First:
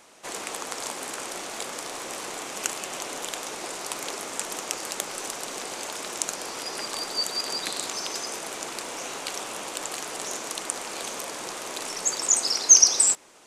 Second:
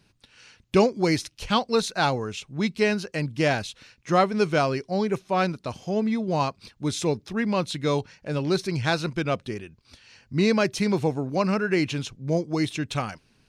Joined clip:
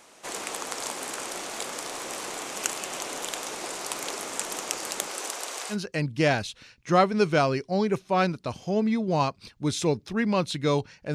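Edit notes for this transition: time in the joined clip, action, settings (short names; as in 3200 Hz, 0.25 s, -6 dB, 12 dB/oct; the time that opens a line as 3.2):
first
5.07–5.77 HPF 220 Hz -> 750 Hz
5.73 switch to second from 2.93 s, crossfade 0.08 s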